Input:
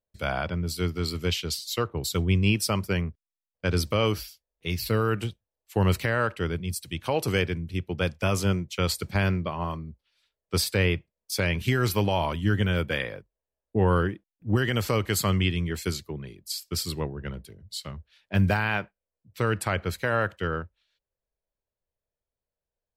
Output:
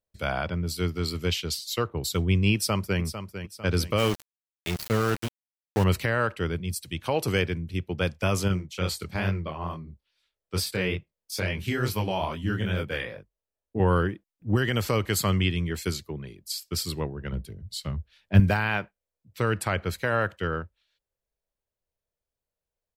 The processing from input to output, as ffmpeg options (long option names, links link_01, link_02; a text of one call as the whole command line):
ffmpeg -i in.wav -filter_complex "[0:a]asplit=2[link_01][link_02];[link_02]afade=type=in:start_time=2.54:duration=0.01,afade=type=out:start_time=3.01:duration=0.01,aecho=0:1:450|900|1350|1800|2250:0.316228|0.142302|0.0640361|0.0288163|0.0129673[link_03];[link_01][link_03]amix=inputs=2:normalize=0,asettb=1/sr,asplit=3[link_04][link_05][link_06];[link_04]atrim=end=3.984[link_07];[link_05]atrim=start=3.98:end=5.84,asetpts=PTS-STARTPTS,afade=type=in:duration=0.004:curve=qsin,afade=type=out:start_time=1.856:duration=0.004:curve=qsin,aeval=exprs='val(0)*gte(abs(val(0)),0.0422)':channel_layout=same[link_08];[link_06]atrim=start=5.836[link_09];[link_07][link_08]acrossfade=duration=0.004:curve1=hsin:curve2=qsin[link_10];[link_10][link_09]acrossfade=duration=0.004:curve1=qsin:curve2=hsin,asettb=1/sr,asplit=3[link_11][link_12][link_13];[link_11]atrim=end=8.484[link_14];[link_12]atrim=start=8.48:end=13.8,asetpts=PTS-STARTPTS,afade=type=in:duration=0.004:curve=qsin,afade=type=out:start_time=5.316:duration=0.004:curve=qsin,flanger=delay=19.5:depth=7.8:speed=2.3[link_15];[link_13]atrim=start=13.796[link_16];[link_14][link_15]acrossfade=duration=0.004:curve1=hsin:curve2=qsin[link_17];[link_17][link_16]acrossfade=duration=0.004:curve1=qsin:curve2=hsin,asettb=1/sr,asplit=3[link_18][link_19][link_20];[link_18]atrim=end=17.324[link_21];[link_19]atrim=start=17.32:end=18.4,asetpts=PTS-STARTPTS,afade=type=in:duration=0.004:curve=qsin,afade=type=out:start_time=1.076:duration=0.004:curve=qsin,lowshelf=frequency=240:gain=10[link_22];[link_20]atrim=start=18.396[link_23];[link_21][link_22]acrossfade=duration=0.004:curve1=hsin:curve2=qsin[link_24];[link_24][link_23]acrossfade=duration=0.004:curve1=qsin:curve2=hsin" out.wav